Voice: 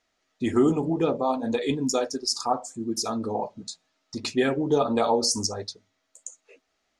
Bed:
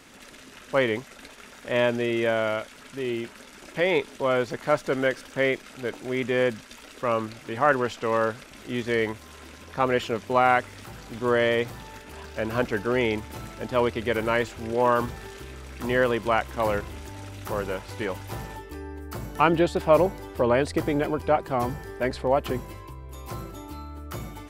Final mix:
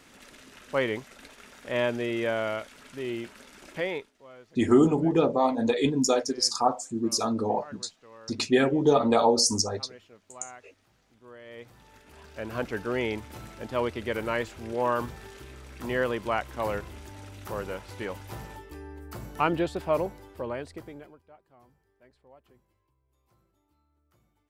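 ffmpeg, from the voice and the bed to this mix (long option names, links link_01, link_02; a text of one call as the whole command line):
ffmpeg -i stem1.wav -i stem2.wav -filter_complex "[0:a]adelay=4150,volume=1.5dB[link_01];[1:a]volume=17dB,afade=type=out:start_time=3.72:duration=0.4:silence=0.0794328,afade=type=in:start_time=11.44:duration=1.36:silence=0.0891251,afade=type=out:start_time=19.46:duration=1.76:silence=0.0398107[link_02];[link_01][link_02]amix=inputs=2:normalize=0" out.wav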